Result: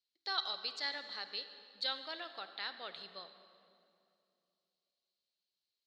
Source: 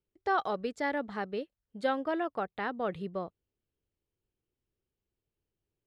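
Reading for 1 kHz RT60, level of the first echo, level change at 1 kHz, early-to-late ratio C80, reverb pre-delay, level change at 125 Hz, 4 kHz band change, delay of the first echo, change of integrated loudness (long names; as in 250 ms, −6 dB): 2.5 s, no echo audible, −12.5 dB, 11.0 dB, 33 ms, below −25 dB, +11.5 dB, no echo audible, −6.0 dB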